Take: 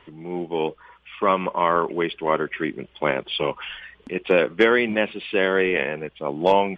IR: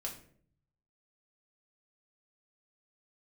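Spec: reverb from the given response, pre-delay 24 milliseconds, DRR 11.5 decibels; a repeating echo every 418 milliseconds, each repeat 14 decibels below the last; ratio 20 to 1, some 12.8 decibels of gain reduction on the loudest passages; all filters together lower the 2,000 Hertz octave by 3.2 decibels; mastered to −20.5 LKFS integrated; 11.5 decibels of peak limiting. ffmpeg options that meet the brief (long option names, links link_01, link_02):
-filter_complex "[0:a]equalizer=frequency=2000:width_type=o:gain=-4,acompressor=threshold=-25dB:ratio=20,alimiter=level_in=0.5dB:limit=-24dB:level=0:latency=1,volume=-0.5dB,aecho=1:1:418|836:0.2|0.0399,asplit=2[link_01][link_02];[1:a]atrim=start_sample=2205,adelay=24[link_03];[link_02][link_03]afir=irnorm=-1:irlink=0,volume=-11dB[link_04];[link_01][link_04]amix=inputs=2:normalize=0,volume=15dB"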